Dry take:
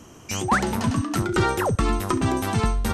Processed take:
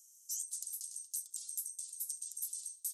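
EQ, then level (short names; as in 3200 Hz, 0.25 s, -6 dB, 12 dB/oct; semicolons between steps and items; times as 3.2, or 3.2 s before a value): inverse Chebyshev high-pass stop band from 2100 Hz, stop band 80 dB; air absorption 150 m; tilt +4 dB/oct; +15.0 dB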